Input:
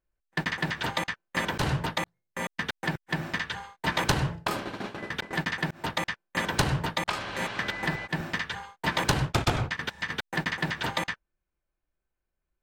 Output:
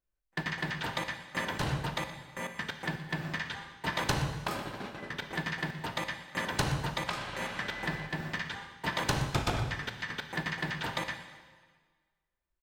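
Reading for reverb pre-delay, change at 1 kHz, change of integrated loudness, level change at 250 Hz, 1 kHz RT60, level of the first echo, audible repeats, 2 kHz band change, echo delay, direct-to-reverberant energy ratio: 7 ms, -4.5 dB, -4.5 dB, -4.5 dB, 1.5 s, -16.5 dB, 1, -4.5 dB, 121 ms, 6.5 dB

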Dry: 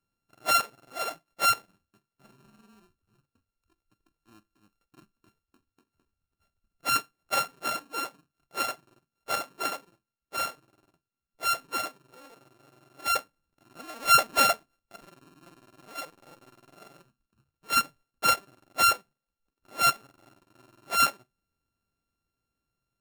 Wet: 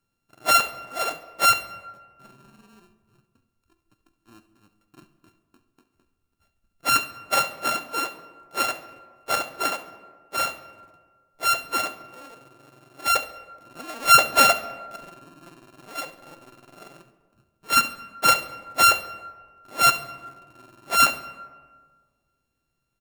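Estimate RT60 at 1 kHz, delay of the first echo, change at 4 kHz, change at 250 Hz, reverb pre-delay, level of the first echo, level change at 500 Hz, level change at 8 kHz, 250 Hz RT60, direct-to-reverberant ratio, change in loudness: 1.5 s, 69 ms, +5.5 dB, +6.0 dB, 3 ms, -16.0 dB, +6.0 dB, +5.5 dB, 1.7 s, 10.5 dB, +5.5 dB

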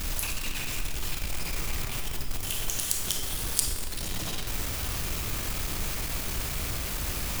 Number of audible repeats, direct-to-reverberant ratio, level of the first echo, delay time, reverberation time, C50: no echo, 2.0 dB, no echo, no echo, 1.9 s, 3.5 dB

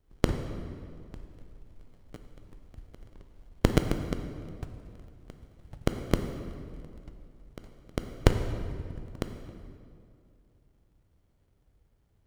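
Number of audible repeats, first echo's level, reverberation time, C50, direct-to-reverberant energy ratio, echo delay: no echo, no echo, 2.4 s, 8.0 dB, 6.5 dB, no echo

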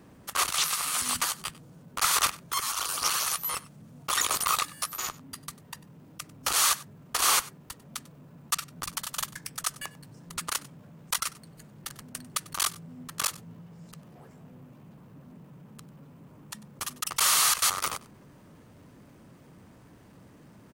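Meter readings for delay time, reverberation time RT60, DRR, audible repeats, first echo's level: 96 ms, no reverb, no reverb, 1, -20.5 dB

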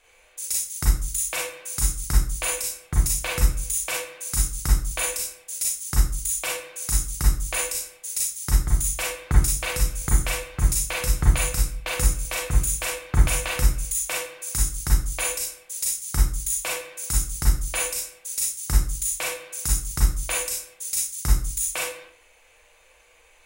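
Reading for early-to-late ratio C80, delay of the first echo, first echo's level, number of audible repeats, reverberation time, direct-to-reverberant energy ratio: 8.5 dB, no echo, no echo, no echo, 0.45 s, -4.5 dB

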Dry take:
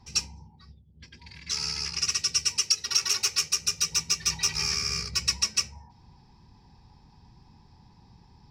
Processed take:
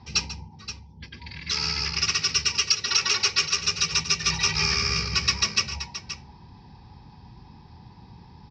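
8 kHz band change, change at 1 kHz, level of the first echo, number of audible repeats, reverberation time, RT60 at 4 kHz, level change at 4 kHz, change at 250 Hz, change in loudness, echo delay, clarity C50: -1.0 dB, +8.5 dB, -14.0 dB, 2, no reverb, no reverb, +3.5 dB, +8.5 dB, +2.5 dB, 141 ms, no reverb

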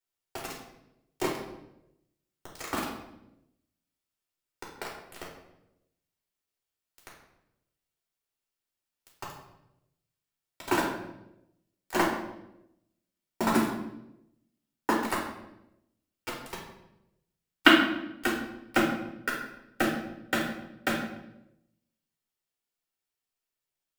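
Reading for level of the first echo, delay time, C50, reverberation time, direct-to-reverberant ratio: no echo, no echo, 3.5 dB, 0.90 s, -5.0 dB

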